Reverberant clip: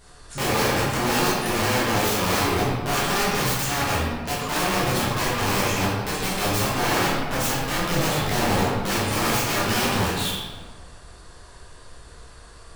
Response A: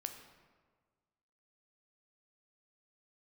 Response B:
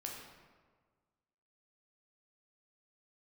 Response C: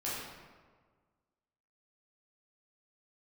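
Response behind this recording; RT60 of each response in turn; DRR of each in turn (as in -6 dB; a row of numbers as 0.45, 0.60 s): C; 1.6, 1.6, 1.6 s; 5.5, -1.0, -8.5 dB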